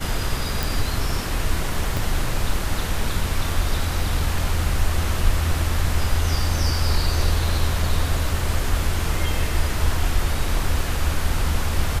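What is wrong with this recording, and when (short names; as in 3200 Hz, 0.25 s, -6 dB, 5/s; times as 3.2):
0.63 pop
1.97 pop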